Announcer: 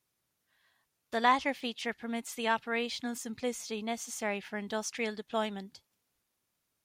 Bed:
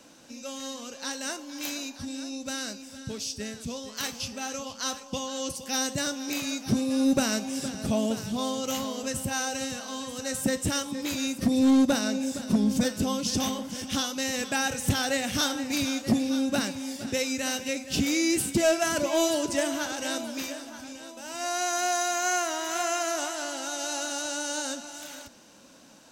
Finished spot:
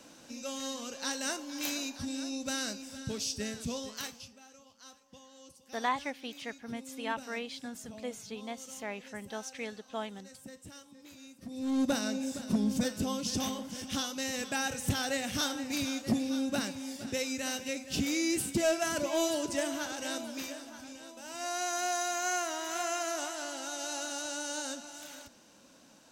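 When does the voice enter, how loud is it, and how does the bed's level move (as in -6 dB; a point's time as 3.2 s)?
4.60 s, -5.5 dB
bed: 3.85 s -1 dB
4.44 s -22 dB
11.42 s -22 dB
11.88 s -5.5 dB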